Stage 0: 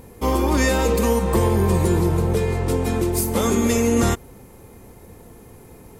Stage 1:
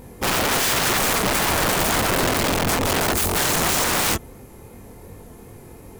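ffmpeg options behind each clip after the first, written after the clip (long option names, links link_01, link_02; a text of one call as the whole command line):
ffmpeg -i in.wav -af "flanger=delay=20:depth=6.4:speed=2.7,aeval=exprs='(mod(10.6*val(0)+1,2)-1)/10.6':channel_layout=same,volume=5dB" out.wav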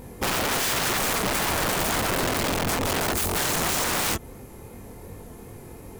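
ffmpeg -i in.wav -af "acompressor=threshold=-24dB:ratio=3" out.wav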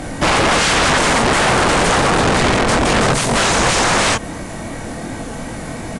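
ffmpeg -i in.wav -filter_complex "[0:a]asplit=2[link_01][link_02];[link_02]highpass=frequency=720:poles=1,volume=21dB,asoftclip=type=tanh:threshold=-16.5dB[link_03];[link_01][link_03]amix=inputs=2:normalize=0,lowpass=frequency=4700:poles=1,volume=-6dB,afreqshift=-210,aresample=22050,aresample=44100,volume=8.5dB" out.wav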